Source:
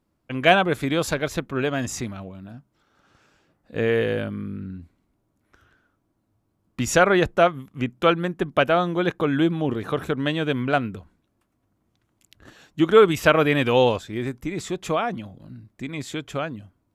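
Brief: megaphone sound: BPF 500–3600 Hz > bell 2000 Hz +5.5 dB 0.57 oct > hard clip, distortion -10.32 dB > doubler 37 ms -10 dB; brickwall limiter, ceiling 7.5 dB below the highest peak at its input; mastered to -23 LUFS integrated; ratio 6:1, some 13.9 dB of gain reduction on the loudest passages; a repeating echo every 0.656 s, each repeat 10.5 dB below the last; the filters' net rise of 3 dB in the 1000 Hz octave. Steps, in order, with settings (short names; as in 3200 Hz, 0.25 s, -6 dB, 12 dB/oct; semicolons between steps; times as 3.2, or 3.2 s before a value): bell 1000 Hz +4.5 dB; compressor 6:1, threshold -24 dBFS; limiter -19 dBFS; BPF 500–3600 Hz; bell 2000 Hz +5.5 dB 0.57 oct; feedback echo 0.656 s, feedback 30%, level -10.5 dB; hard clip -28 dBFS; doubler 37 ms -10 dB; gain +12 dB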